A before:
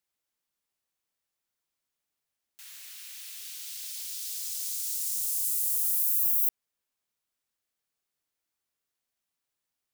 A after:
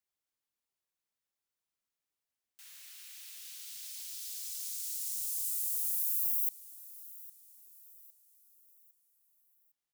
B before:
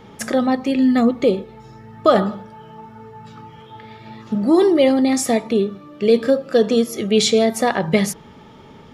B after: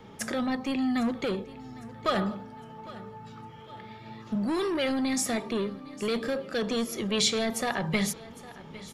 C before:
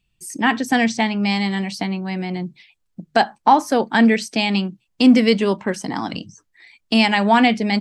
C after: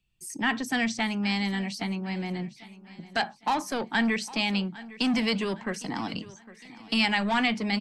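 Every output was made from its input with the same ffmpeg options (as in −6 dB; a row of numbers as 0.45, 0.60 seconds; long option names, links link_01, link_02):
-filter_complex "[0:a]acrossover=split=170|1200|1800[link_01][link_02][link_03][link_04];[link_02]asoftclip=type=tanh:threshold=-22.5dB[link_05];[link_01][link_05][link_03][link_04]amix=inputs=4:normalize=0,aecho=1:1:807|1614|2421|3228:0.119|0.0523|0.023|0.0101,volume=-6dB"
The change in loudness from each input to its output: −6.5, −11.5, −10.0 LU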